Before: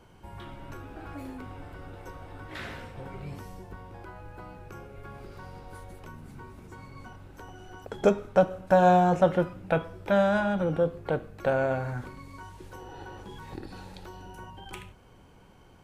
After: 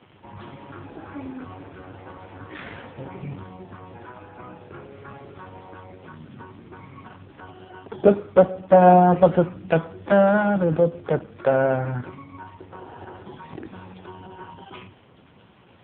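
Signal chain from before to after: 12.28–13.31 LPF 2400 Hz 12 dB/oct; crackle 200/s -40 dBFS; gain +7 dB; AMR-NB 5.15 kbps 8000 Hz

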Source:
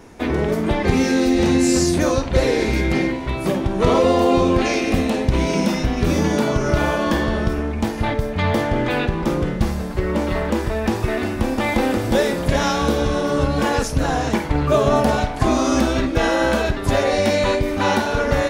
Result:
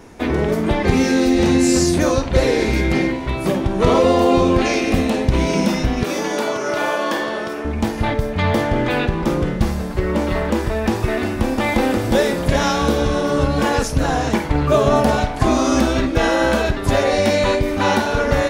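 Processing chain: 6.03–7.65 HPF 390 Hz 12 dB/oct; gain +1.5 dB

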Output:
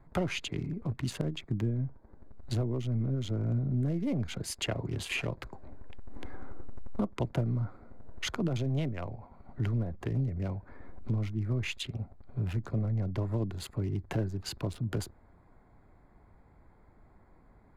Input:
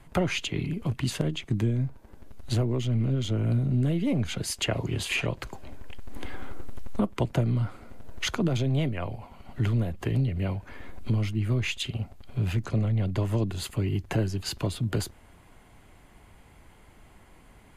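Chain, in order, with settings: Wiener smoothing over 15 samples; gain -5 dB

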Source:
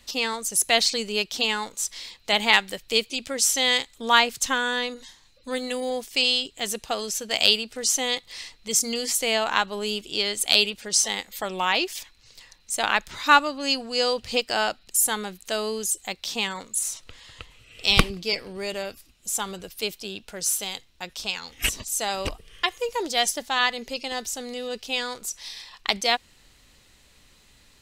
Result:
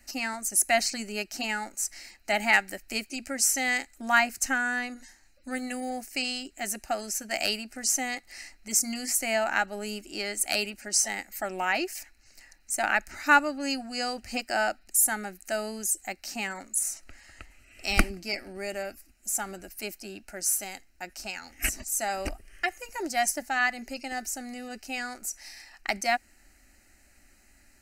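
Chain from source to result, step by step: fixed phaser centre 700 Hz, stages 8

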